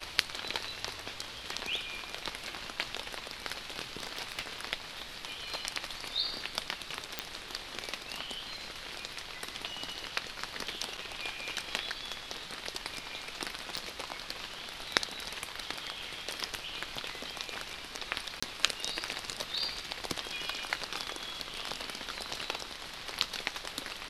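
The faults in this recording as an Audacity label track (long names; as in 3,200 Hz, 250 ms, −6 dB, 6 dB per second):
4.000000	4.560000	clipping −28 dBFS
7.190000	7.190000	click −14 dBFS
10.970000	10.980000	drop-out 6.5 ms
13.770000	13.770000	click −21 dBFS
18.400000	18.430000	drop-out 25 ms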